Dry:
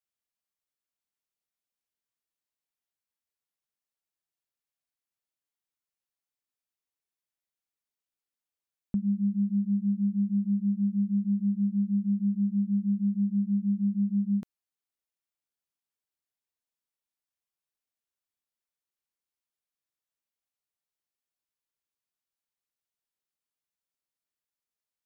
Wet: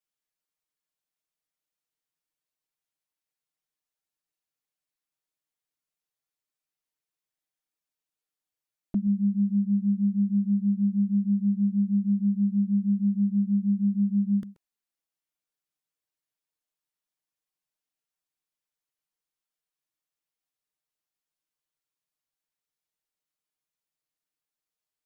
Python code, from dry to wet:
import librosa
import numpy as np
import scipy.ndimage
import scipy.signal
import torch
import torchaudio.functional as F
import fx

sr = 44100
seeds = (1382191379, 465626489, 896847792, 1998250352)

y = x + 10.0 ** (-17.5 / 20.0) * np.pad(x, (int(130 * sr / 1000.0), 0))[:len(x)]
y = fx.env_flanger(y, sr, rest_ms=6.5, full_db=-23.0)
y = F.gain(torch.from_numpy(y), 3.5).numpy()